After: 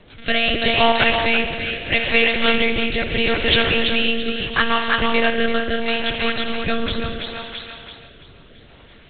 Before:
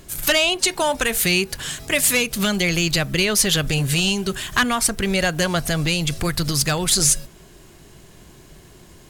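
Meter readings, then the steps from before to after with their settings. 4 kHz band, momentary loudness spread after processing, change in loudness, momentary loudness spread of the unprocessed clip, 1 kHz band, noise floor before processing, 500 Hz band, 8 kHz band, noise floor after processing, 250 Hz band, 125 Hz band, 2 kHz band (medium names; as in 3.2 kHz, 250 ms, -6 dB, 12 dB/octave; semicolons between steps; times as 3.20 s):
+1.5 dB, 10 LU, +0.5 dB, 6 LU, +4.5 dB, -47 dBFS, +3.0 dB, under -40 dB, -46 dBFS, -0.5 dB, -7.5 dB, +3.5 dB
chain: bass shelf 180 Hz -11 dB; spring tank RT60 2.3 s, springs 58 ms, chirp 30 ms, DRR 5 dB; monotone LPC vocoder at 8 kHz 230 Hz; thinning echo 335 ms, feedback 51%, high-pass 520 Hz, level -4.5 dB; rotary cabinet horn 0.75 Hz; trim +5 dB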